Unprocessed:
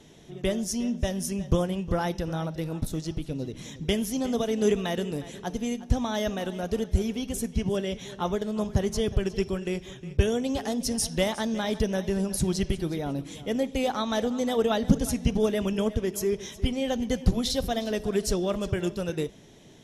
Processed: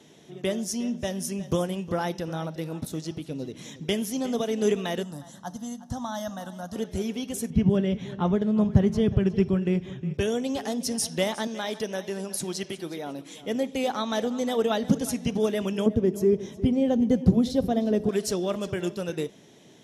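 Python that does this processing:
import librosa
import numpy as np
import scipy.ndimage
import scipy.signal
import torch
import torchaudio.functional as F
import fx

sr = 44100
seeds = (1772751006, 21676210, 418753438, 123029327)

y = fx.high_shelf(x, sr, hz=7300.0, db=7.0, at=(1.43, 1.89))
y = fx.fixed_phaser(y, sr, hz=1000.0, stages=4, at=(5.03, 6.76))
y = fx.bass_treble(y, sr, bass_db=14, treble_db=-13, at=(7.5, 10.14))
y = fx.highpass(y, sr, hz=400.0, slope=6, at=(11.47, 13.43))
y = fx.tilt_shelf(y, sr, db=10.0, hz=760.0, at=(15.86, 18.09))
y = scipy.signal.sosfilt(scipy.signal.butter(2, 150.0, 'highpass', fs=sr, output='sos'), y)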